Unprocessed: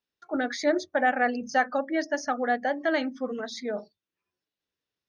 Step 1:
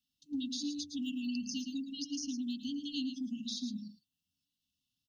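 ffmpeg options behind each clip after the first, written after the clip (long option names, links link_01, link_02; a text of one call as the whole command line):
ffmpeg -i in.wav -filter_complex "[0:a]afftfilt=real='re*(1-between(b*sr/4096,300,2600))':imag='im*(1-between(b*sr/4096,300,2600))':win_size=4096:overlap=0.75,aecho=1:1:110:0.299,acrossover=split=260|2600|5900[link_01][link_02][link_03][link_04];[link_01]acompressor=threshold=-44dB:ratio=4[link_05];[link_02]acompressor=threshold=-49dB:ratio=4[link_06];[link_03]acompressor=threshold=-47dB:ratio=4[link_07];[link_04]acompressor=threshold=-53dB:ratio=4[link_08];[link_05][link_06][link_07][link_08]amix=inputs=4:normalize=0,volume=4dB" out.wav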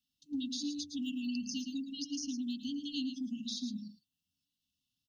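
ffmpeg -i in.wav -af anull out.wav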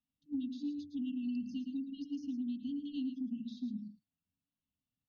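ffmpeg -i in.wav -af "lowpass=1500" out.wav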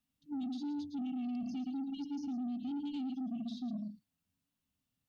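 ffmpeg -i in.wav -af "alimiter=level_in=12dB:limit=-24dB:level=0:latency=1:release=17,volume=-12dB,asoftclip=type=tanh:threshold=-40dB,volume=6dB" out.wav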